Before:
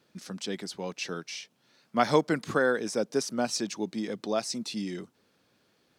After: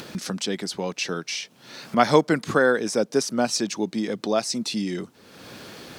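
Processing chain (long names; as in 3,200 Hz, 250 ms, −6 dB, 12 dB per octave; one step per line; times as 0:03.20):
upward compression, threshold −29 dBFS
level +6 dB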